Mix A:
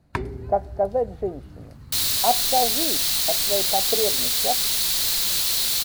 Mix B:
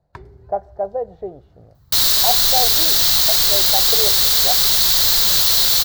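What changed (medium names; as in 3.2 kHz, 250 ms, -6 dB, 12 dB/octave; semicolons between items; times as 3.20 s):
first sound -9.0 dB; second sound +10.5 dB; master: add fifteen-band graphic EQ 250 Hz -11 dB, 2.5 kHz -8 dB, 10 kHz -11 dB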